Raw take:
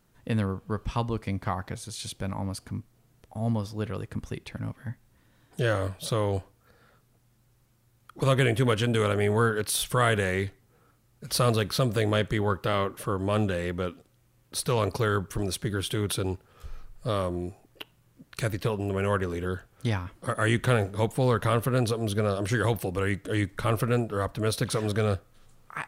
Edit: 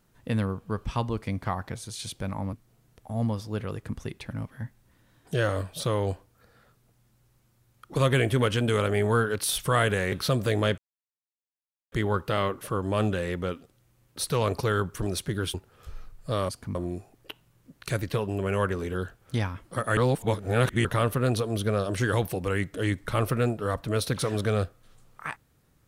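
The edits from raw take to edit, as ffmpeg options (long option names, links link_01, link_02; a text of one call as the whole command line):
ffmpeg -i in.wav -filter_complex "[0:a]asplit=9[link_01][link_02][link_03][link_04][link_05][link_06][link_07][link_08][link_09];[link_01]atrim=end=2.532[link_10];[link_02]atrim=start=2.788:end=10.382[link_11];[link_03]atrim=start=11.618:end=12.28,asetpts=PTS-STARTPTS,afade=type=out:start_time=0.658:duration=0.004:curve=hsin,apad=pad_dur=1.14[link_12];[link_04]atrim=start=12.28:end=15.902,asetpts=PTS-STARTPTS,afade=type=in:duration=0.004:curve=hsin[link_13];[link_05]atrim=start=16.308:end=17.262[link_14];[link_06]atrim=start=2.528:end=2.792[link_15];[link_07]atrim=start=17.258:end=20.482[link_16];[link_08]atrim=start=20.478:end=21.362,asetpts=PTS-STARTPTS,areverse[link_17];[link_09]atrim=start=21.358[link_18];[link_10][link_11]acrossfade=duration=0.004:curve1=hsin:curve2=hsin[link_19];[link_12][link_13]concat=n=2:v=0:a=1[link_20];[link_19][link_20]acrossfade=duration=0.004:curve1=hsin:curve2=hsin[link_21];[link_21][link_14]acrossfade=duration=0.004:curve1=hsin:curve2=hsin[link_22];[link_22][link_15]acrossfade=duration=0.004:curve1=hsin:curve2=hsin[link_23];[link_23][link_16]acrossfade=duration=0.004:curve1=hsin:curve2=hsin[link_24];[link_24][link_17]acrossfade=duration=0.004:curve1=hsin:curve2=hsin[link_25];[link_25][link_18]acrossfade=duration=0.004:curve1=hsin:curve2=hsin" out.wav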